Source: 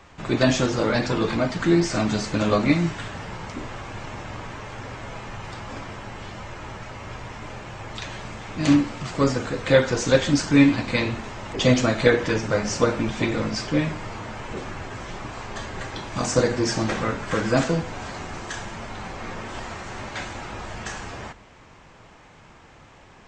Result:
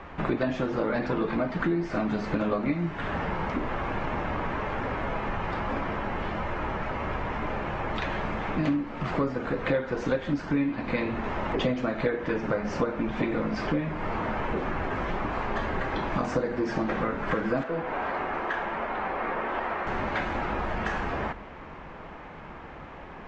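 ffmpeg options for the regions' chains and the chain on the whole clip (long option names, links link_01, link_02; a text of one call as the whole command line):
ffmpeg -i in.wav -filter_complex "[0:a]asettb=1/sr,asplit=3[link_01][link_02][link_03];[link_01]atrim=end=17.634[link_04];[link_02]atrim=start=17.63:end=19.87,asetpts=PTS-STARTPTS,afade=type=in:duration=0.004:curve=qsin,afade=type=out:start_time=2.236:duration=0.004:curve=qsin,bass=frequency=250:gain=-14,treble=frequency=4000:gain=-13,asoftclip=type=hard:threshold=-23.5dB[link_05];[link_03]atrim=start=19.866[link_06];[link_04][link_05]acrossfade=duration=0.004:curve1=hsin:curve2=qsin[link_07];[link_07][link_06]acrossfade=duration=0.004:curve1=qsin:curve2=hsin,lowpass=2000,equalizer=frequency=110:width=4.2:gain=-12.5,acompressor=threshold=-33dB:ratio=6,volume=8dB" out.wav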